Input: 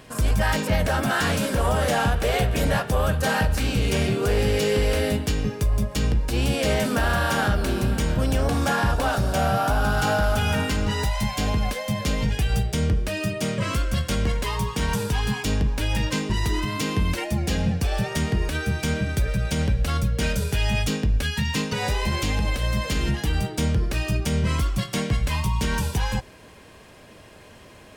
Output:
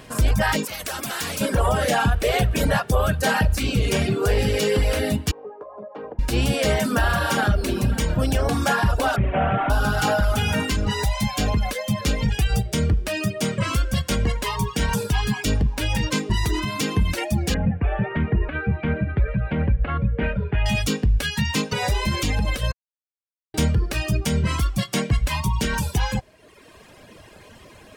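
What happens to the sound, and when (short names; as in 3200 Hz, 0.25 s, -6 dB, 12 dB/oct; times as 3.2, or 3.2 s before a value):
0.65–1.41 spectral compressor 2:1
5.31–6.19 Butterworth band-pass 680 Hz, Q 1
9.16–9.7 delta modulation 16 kbps, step -29.5 dBFS
17.54–20.66 inverse Chebyshev low-pass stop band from 5700 Hz, stop band 50 dB
22.72–23.54 mute
whole clip: reverb removal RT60 1.1 s; gain +3.5 dB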